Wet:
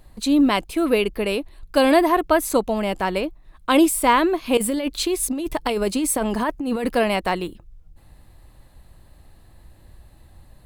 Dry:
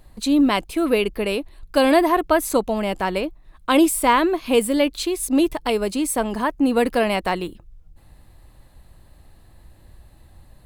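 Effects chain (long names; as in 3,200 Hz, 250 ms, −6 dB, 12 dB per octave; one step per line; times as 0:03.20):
0:04.57–0:06.92: compressor whose output falls as the input rises −22 dBFS, ratio −1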